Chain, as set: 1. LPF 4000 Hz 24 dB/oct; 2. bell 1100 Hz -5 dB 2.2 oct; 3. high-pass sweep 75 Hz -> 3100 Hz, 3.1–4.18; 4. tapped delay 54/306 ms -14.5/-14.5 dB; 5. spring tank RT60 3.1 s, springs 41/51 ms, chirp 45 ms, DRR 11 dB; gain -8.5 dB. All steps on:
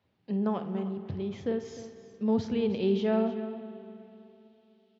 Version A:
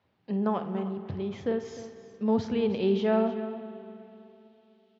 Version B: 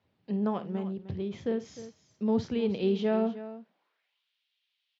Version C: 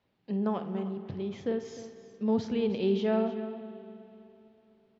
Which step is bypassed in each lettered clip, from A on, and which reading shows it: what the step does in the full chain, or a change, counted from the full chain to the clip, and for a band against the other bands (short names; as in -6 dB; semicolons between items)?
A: 2, 1 kHz band +3.0 dB; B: 5, echo-to-direct -8.0 dB to -11.5 dB; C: 3, 125 Hz band -1.5 dB